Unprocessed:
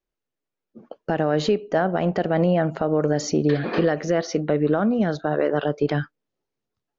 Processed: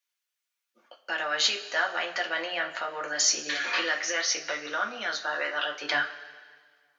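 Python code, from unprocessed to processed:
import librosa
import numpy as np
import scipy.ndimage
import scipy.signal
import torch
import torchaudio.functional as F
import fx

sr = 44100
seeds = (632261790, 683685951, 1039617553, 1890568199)

y = fx.filter_sweep_highpass(x, sr, from_hz=2000.0, to_hz=680.0, start_s=5.77, end_s=6.29, q=0.81)
y = fx.rev_double_slope(y, sr, seeds[0], early_s=0.21, late_s=1.7, knee_db=-18, drr_db=0.0)
y = y * 10.0 ** (6.0 / 20.0)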